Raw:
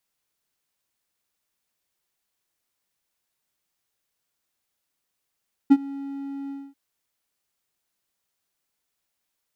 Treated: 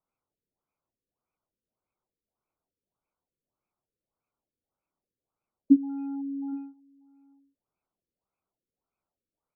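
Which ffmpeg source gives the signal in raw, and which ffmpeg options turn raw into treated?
-f lavfi -i "aevalsrc='0.501*(1-4*abs(mod(277*t+0.25,1)-0.5))':d=1.04:s=44100,afade=t=in:d=0.018,afade=t=out:st=0.018:d=0.048:silence=0.075,afade=t=out:st=0.8:d=0.24"
-filter_complex "[0:a]asuperstop=centerf=1800:order=4:qfactor=1.9,asplit=2[a][b];[b]adelay=816.3,volume=-26dB,highshelf=f=4k:g=-18.4[c];[a][c]amix=inputs=2:normalize=0,afftfilt=real='re*lt(b*sr/1024,520*pow(2700/520,0.5+0.5*sin(2*PI*1.7*pts/sr)))':imag='im*lt(b*sr/1024,520*pow(2700/520,0.5+0.5*sin(2*PI*1.7*pts/sr)))':win_size=1024:overlap=0.75"

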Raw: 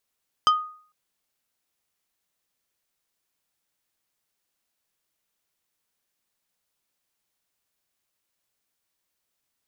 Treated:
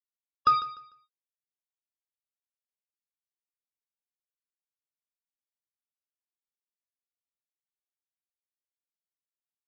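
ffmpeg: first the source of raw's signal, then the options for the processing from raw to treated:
-f lavfi -i "aevalsrc='0.237*pow(10,-3*t/0.49)*sin(2*PI*1240*t)+0.112*pow(10,-3*t/0.163)*sin(2*PI*3100*t)+0.0531*pow(10,-3*t/0.093)*sin(2*PI*4960*t)+0.0251*pow(10,-3*t/0.071)*sin(2*PI*6200*t)+0.0119*pow(10,-3*t/0.052)*sin(2*PI*8060*t)':d=0.45:s=44100"
-af "aresample=11025,acrusher=bits=4:mix=0:aa=0.5,aresample=44100,aecho=1:1:149|298|447:0.178|0.0427|0.0102,afftfilt=real='re*eq(mod(floor(b*sr/1024/560),2),0)':imag='im*eq(mod(floor(b*sr/1024/560),2),0)':win_size=1024:overlap=0.75"

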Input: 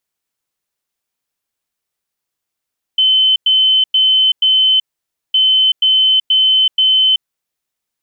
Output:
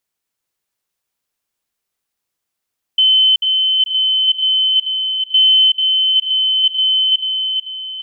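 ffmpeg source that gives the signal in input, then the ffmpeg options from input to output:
-f lavfi -i "aevalsrc='0.398*sin(2*PI*3060*t)*clip(min(mod(mod(t,2.36),0.48),0.38-mod(mod(t,2.36),0.48))/0.005,0,1)*lt(mod(t,2.36),1.92)':d=4.72:s=44100"
-af "aecho=1:1:440|880|1320|1760|2200:0.531|0.218|0.0892|0.0366|0.015"

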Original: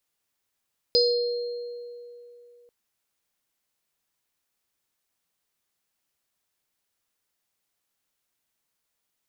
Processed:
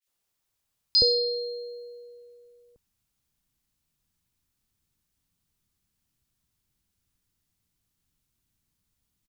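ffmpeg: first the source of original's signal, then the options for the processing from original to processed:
-f lavfi -i "aevalsrc='0.119*pow(10,-3*t/2.98)*sin(2*PI*481*t)+0.0841*pow(10,-3*t/1.45)*sin(2*PI*4210*t)+0.119*pow(10,-3*t/0.48)*sin(2*PI*4970*t)':d=1.74:s=44100"
-filter_complex "[0:a]asubboost=boost=11:cutoff=170,acrossover=split=1900[a][b];[a]adelay=70[c];[c][b]amix=inputs=2:normalize=0,adynamicequalizer=threshold=0.01:dfrequency=2900:dqfactor=0.7:tfrequency=2900:tqfactor=0.7:attack=5:release=100:ratio=0.375:range=3.5:mode=boostabove:tftype=highshelf"

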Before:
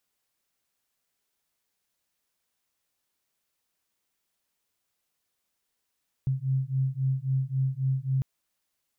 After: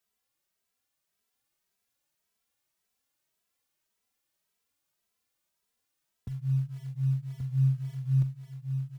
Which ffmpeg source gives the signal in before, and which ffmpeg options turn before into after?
-f lavfi -i "aevalsrc='0.0422*(sin(2*PI*131*t)+sin(2*PI*134.7*t))':d=1.95:s=44100"
-filter_complex "[0:a]acrossover=split=110[a][b];[a]acrusher=bits=5:mode=log:mix=0:aa=0.000001[c];[c][b]amix=inputs=2:normalize=0,aecho=1:1:1130:0.596,asplit=2[d][e];[e]adelay=2.7,afreqshift=1.8[f];[d][f]amix=inputs=2:normalize=1"

